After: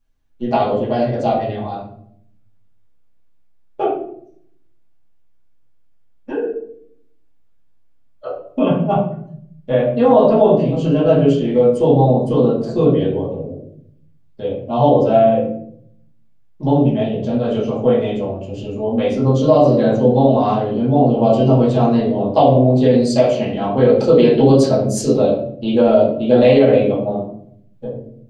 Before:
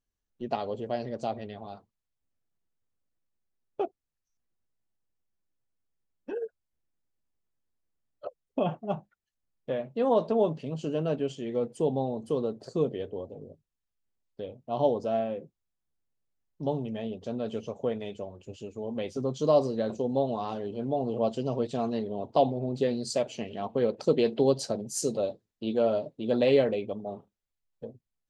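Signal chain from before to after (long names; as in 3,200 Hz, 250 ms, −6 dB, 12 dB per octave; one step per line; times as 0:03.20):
0:08.27–0:08.77: parametric band 760 Hz −13 dB 0.46 octaves
convolution reverb RT60 0.65 s, pre-delay 4 ms, DRR −8.5 dB
boost into a limiter +6.5 dB
level −1 dB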